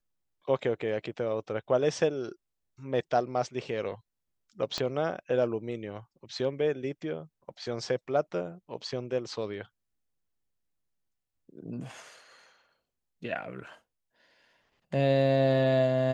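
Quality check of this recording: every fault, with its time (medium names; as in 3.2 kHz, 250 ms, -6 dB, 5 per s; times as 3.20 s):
4.78 s: pop -17 dBFS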